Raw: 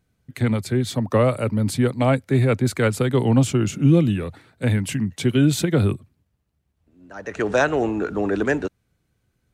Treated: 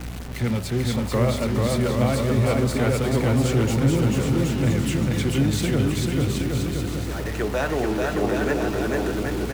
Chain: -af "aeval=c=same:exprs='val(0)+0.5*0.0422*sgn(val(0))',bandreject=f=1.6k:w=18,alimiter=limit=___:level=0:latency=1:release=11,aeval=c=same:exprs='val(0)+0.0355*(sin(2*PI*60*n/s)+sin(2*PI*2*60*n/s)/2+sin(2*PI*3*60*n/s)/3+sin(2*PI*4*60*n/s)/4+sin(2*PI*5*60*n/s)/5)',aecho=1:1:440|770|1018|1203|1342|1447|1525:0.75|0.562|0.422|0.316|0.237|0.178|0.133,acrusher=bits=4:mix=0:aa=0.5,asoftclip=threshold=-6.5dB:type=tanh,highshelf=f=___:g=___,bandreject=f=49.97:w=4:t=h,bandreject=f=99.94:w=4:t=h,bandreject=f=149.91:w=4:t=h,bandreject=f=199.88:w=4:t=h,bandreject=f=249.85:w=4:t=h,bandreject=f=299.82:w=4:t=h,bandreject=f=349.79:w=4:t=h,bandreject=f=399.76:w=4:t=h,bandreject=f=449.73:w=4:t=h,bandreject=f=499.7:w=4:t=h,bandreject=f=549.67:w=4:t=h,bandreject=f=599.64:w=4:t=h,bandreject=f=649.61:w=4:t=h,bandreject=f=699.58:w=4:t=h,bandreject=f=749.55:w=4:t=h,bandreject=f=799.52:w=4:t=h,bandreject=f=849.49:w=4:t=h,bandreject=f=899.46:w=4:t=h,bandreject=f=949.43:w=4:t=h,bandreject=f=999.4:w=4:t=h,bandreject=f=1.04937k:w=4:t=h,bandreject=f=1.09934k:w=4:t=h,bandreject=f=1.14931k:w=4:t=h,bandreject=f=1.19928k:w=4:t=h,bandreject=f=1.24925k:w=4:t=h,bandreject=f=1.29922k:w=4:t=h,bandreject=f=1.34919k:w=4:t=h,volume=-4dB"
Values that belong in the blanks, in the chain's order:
-9.5dB, 6.7k, -5